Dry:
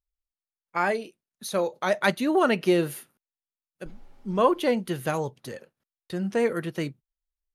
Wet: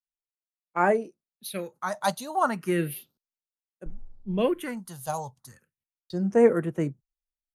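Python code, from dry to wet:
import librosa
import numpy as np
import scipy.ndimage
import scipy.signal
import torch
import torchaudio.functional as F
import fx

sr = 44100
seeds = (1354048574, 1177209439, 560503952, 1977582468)

y = fx.phaser_stages(x, sr, stages=4, low_hz=340.0, high_hz=4300.0, hz=0.34, feedback_pct=40)
y = fx.band_widen(y, sr, depth_pct=70)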